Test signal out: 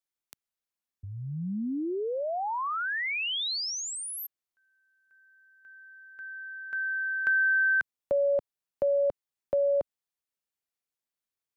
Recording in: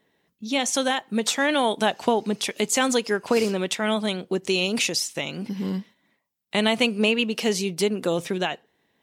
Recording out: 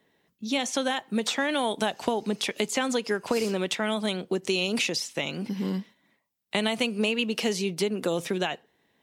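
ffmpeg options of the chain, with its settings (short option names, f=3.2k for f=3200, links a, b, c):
-filter_complex "[0:a]acrossover=split=150|4600[a][b][c];[a]acompressor=threshold=-46dB:ratio=4[d];[b]acompressor=threshold=-23dB:ratio=4[e];[c]acompressor=threshold=-37dB:ratio=4[f];[d][e][f]amix=inputs=3:normalize=0"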